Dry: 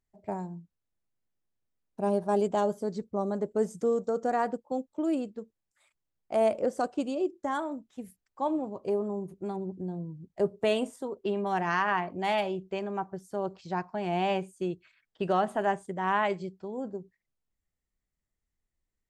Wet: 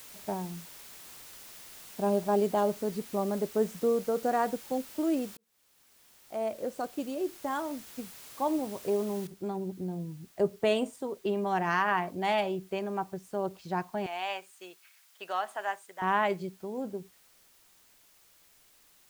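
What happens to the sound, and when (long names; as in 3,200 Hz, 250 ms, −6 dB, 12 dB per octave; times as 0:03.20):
0:02.18–0:04.19: high-shelf EQ 6,700 Hz −9 dB
0:05.37–0:08.03: fade in
0:09.27: noise floor change −49 dB −62 dB
0:14.06–0:16.02: high-pass filter 980 Hz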